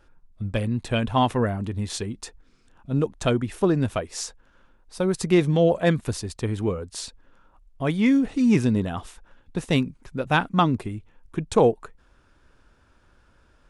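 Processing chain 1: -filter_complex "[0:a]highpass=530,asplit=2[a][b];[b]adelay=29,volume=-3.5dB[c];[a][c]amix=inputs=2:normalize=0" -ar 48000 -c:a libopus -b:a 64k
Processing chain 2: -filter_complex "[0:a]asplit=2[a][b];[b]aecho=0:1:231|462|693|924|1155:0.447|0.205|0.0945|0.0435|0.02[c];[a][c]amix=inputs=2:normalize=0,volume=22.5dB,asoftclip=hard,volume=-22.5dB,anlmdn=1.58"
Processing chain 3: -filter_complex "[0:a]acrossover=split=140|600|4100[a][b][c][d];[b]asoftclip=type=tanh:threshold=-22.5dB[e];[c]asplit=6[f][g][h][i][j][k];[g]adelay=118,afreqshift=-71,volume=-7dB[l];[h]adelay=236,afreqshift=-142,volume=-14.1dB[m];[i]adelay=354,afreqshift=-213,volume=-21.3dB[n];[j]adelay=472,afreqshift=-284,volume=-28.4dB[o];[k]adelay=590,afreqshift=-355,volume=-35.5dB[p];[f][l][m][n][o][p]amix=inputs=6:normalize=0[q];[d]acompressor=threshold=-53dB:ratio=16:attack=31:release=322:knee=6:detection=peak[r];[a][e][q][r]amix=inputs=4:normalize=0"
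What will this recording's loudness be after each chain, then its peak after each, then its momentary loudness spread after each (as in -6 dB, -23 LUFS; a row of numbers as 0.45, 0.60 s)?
-28.0, -28.0, -26.5 LUFS; -6.0, -22.5, -6.5 dBFS; 17, 11, 14 LU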